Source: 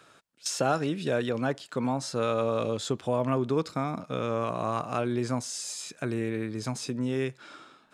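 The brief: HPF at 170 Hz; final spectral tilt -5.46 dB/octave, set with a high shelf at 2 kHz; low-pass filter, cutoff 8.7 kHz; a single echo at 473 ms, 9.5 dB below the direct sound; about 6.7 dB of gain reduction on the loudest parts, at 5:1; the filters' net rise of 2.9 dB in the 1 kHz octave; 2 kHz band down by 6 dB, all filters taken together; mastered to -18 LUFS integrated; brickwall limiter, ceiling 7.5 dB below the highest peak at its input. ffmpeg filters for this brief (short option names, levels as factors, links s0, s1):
-af "highpass=170,lowpass=8700,equalizer=f=1000:t=o:g=8,highshelf=f=2000:g=-7.5,equalizer=f=2000:t=o:g=-8.5,acompressor=threshold=0.0398:ratio=5,alimiter=level_in=1.06:limit=0.0631:level=0:latency=1,volume=0.944,aecho=1:1:473:0.335,volume=7.5"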